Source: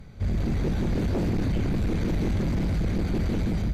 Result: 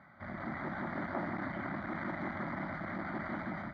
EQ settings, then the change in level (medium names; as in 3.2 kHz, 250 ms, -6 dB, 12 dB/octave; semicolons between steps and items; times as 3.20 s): cabinet simulation 380–2900 Hz, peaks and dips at 600 Hz +5 dB, 1.3 kHz +5 dB, 2 kHz +10 dB; static phaser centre 1.1 kHz, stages 4; +1.0 dB